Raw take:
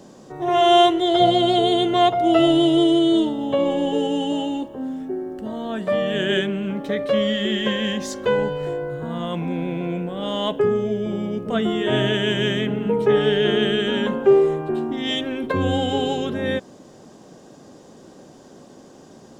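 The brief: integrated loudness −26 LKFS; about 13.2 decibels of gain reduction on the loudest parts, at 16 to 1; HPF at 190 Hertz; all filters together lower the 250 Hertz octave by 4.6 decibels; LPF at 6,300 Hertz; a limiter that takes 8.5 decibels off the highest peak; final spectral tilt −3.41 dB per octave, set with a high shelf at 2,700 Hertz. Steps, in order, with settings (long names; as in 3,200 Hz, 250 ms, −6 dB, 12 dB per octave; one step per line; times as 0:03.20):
high-pass filter 190 Hz
low-pass filter 6,300 Hz
parametric band 250 Hz −5.5 dB
high-shelf EQ 2,700 Hz −4.5 dB
downward compressor 16 to 1, threshold −25 dBFS
level +6 dB
brickwall limiter −17.5 dBFS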